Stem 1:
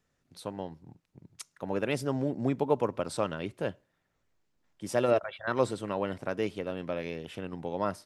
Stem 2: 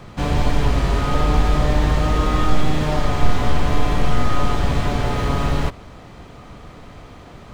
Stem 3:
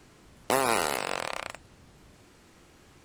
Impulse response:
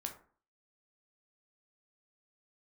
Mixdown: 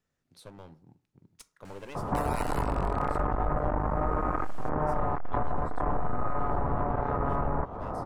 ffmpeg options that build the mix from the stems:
-filter_complex "[0:a]acompressor=threshold=-28dB:ratio=6,aeval=exprs='clip(val(0),-1,0.00794)':c=same,volume=-8.5dB,asplit=3[a][b][c];[b]volume=-5.5dB[d];[1:a]lowpass=f=1k:w=0.5412,lowpass=f=1k:w=1.3066,acontrast=59,aeval=exprs='(tanh(2.82*val(0)+0.7)-tanh(0.7))/2.82':c=same,adelay=1950,volume=2dB[e];[2:a]crystalizer=i=2:c=0,adelay=1650,volume=-0.5dB[f];[c]apad=whole_len=206870[g];[f][g]sidechaincompress=threshold=-52dB:ratio=8:attack=37:release=1100[h];[e][h]amix=inputs=2:normalize=0,equalizer=f=1.4k:t=o:w=2.5:g=14,alimiter=limit=-7.5dB:level=0:latency=1:release=132,volume=0dB[i];[3:a]atrim=start_sample=2205[j];[d][j]afir=irnorm=-1:irlink=0[k];[a][i][k]amix=inputs=3:normalize=0,acompressor=threshold=-30dB:ratio=2.5"

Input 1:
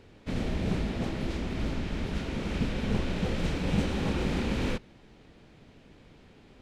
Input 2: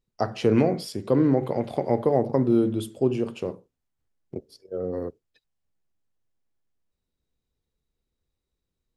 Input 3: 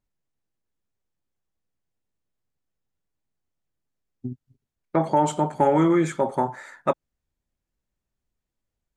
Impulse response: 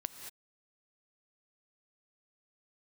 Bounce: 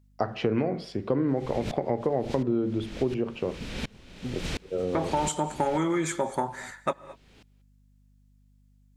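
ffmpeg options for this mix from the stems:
-filter_complex "[0:a]aeval=exprs='val(0)*pow(10,-29*if(lt(mod(-1.4*n/s,1),2*abs(-1.4)/1000),1-mod(-1.4*n/s,1)/(2*abs(-1.4)/1000),(mod(-1.4*n/s,1)-2*abs(-1.4)/1000)/(1-2*abs(-1.4)/1000))/20)':c=same,adelay=1000,volume=-0.5dB[a];[1:a]acrusher=bits=9:mix=0:aa=0.000001,lowpass=1.9k,volume=0.5dB,asplit=3[b][c][d];[c]volume=-24dB[e];[2:a]aeval=exprs='val(0)+0.00158*(sin(2*PI*50*n/s)+sin(2*PI*2*50*n/s)/2+sin(2*PI*3*50*n/s)/3+sin(2*PI*4*50*n/s)/4+sin(2*PI*5*50*n/s)/5)':c=same,volume=-5.5dB,asplit=2[f][g];[g]volume=-8.5dB[h];[d]apad=whole_len=335816[i];[a][i]sidechaincompress=threshold=-24dB:ratio=8:attack=31:release=100[j];[3:a]atrim=start_sample=2205[k];[e][h]amix=inputs=2:normalize=0[l];[l][k]afir=irnorm=-1:irlink=0[m];[j][b][f][m]amix=inputs=4:normalize=0,highshelf=f=2.2k:g=11.5,acompressor=threshold=-23dB:ratio=4"

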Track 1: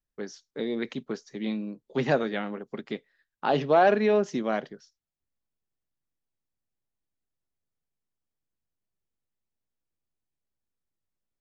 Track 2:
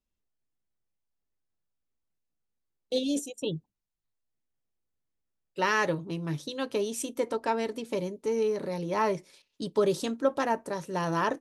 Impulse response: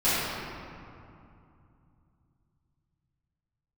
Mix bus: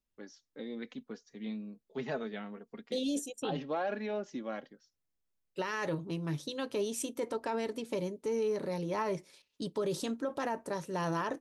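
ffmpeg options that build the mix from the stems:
-filter_complex "[0:a]flanger=delay=3.4:depth=1.3:regen=31:speed=0.24:shape=triangular,volume=-7.5dB[a];[1:a]volume=-2.5dB[b];[a][b]amix=inputs=2:normalize=0,alimiter=level_in=1.5dB:limit=-24dB:level=0:latency=1:release=28,volume=-1.5dB"

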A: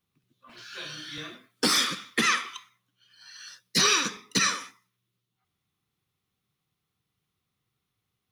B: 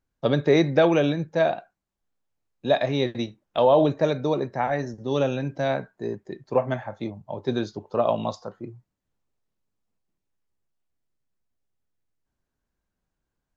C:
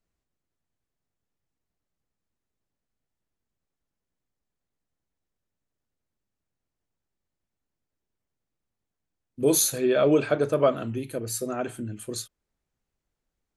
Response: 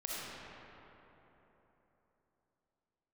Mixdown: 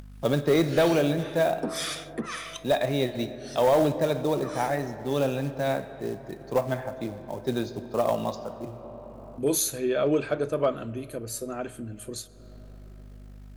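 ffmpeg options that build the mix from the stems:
-filter_complex "[0:a]equalizer=f=9.6k:w=1.5:g=11.5,acompressor=threshold=-25dB:ratio=2,acrossover=split=1000[a][b];[a]aeval=exprs='val(0)*(1-1/2+1/2*cos(2*PI*1.8*n/s))':c=same[c];[b]aeval=exprs='val(0)*(1-1/2-1/2*cos(2*PI*1.8*n/s))':c=same[d];[c][d]amix=inputs=2:normalize=0,volume=1dB,asplit=3[e][f][g];[e]atrim=end=3.72,asetpts=PTS-STARTPTS,afade=t=out:st=3.716:d=0.004:c=hsin[h];[f]atrim=start=3.72:end=4.43,asetpts=PTS-STARTPTS,volume=0[i];[g]atrim=start=4.43,asetpts=PTS-STARTPTS,afade=t=in:d=0.004:c=hsin[j];[h][i][j]concat=n=3:v=0:a=1[k];[1:a]aeval=exprs='val(0)+0.00224*(sin(2*PI*50*n/s)+sin(2*PI*2*50*n/s)/2+sin(2*PI*3*50*n/s)/3+sin(2*PI*4*50*n/s)/4+sin(2*PI*5*50*n/s)/5)':c=same,acontrast=30,acrusher=bits=5:mode=log:mix=0:aa=0.000001,volume=-8.5dB,asplit=2[l][m];[m]volume=-13dB[n];[2:a]volume=-4dB,asplit=2[o][p];[p]volume=-23dB[q];[3:a]atrim=start_sample=2205[r];[n][q]amix=inputs=2:normalize=0[s];[s][r]afir=irnorm=-1:irlink=0[t];[k][l][o][t]amix=inputs=4:normalize=0,acompressor=mode=upward:threshold=-34dB:ratio=2.5,aeval=exprs='clip(val(0),-1,0.15)':c=same"

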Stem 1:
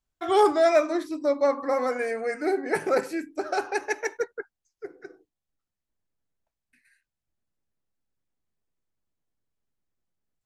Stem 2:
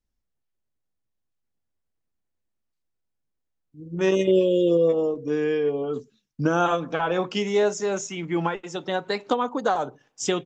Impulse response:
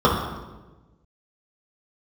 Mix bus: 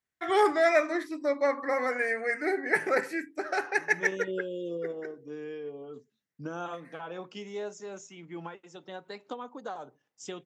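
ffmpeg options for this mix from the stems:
-filter_complex "[0:a]equalizer=f=1.9k:t=o:w=0.53:g=13.5,volume=-4.5dB[a];[1:a]volume=-15.5dB[b];[a][b]amix=inputs=2:normalize=0,highpass=110"

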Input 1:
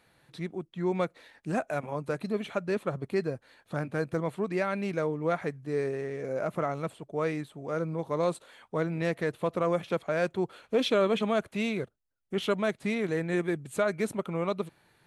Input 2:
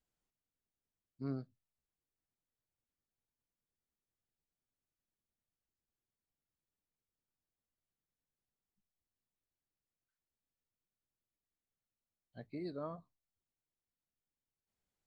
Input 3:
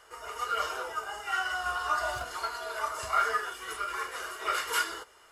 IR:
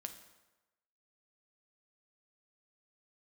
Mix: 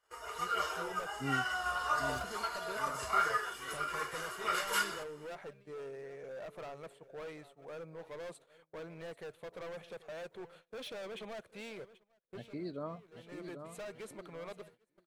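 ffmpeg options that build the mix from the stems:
-filter_complex "[0:a]lowshelf=f=370:t=q:w=1.5:g=-6.5,asoftclip=type=hard:threshold=-31dB,volume=-11dB,asplit=2[a][b];[b]volume=-16dB[c];[1:a]volume=1.5dB,asplit=3[d][e][f];[e]volume=-7.5dB[g];[2:a]volume=-3.5dB[h];[f]apad=whole_len=664350[i];[a][i]sidechaincompress=threshold=-58dB:ratio=10:attack=20:release=390[j];[c][g]amix=inputs=2:normalize=0,aecho=0:1:787|1574|2361|3148|3935|4722:1|0.4|0.16|0.064|0.0256|0.0102[k];[j][d][h][k]amix=inputs=4:normalize=0,agate=range=-21dB:threshold=-58dB:ratio=16:detection=peak"

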